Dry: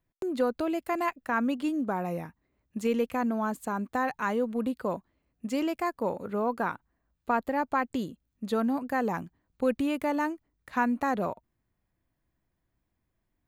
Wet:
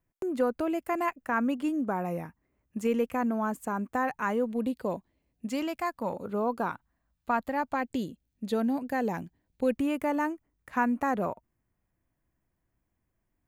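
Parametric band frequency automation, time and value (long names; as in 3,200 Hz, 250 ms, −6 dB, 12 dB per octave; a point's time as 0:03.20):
parametric band −9 dB 0.57 octaves
4,000 Hz
from 0:04.46 1,300 Hz
from 0:05.49 410 Hz
from 0:06.13 1,900 Hz
from 0:06.70 400 Hz
from 0:07.74 1,200 Hz
from 0:09.76 4,000 Hz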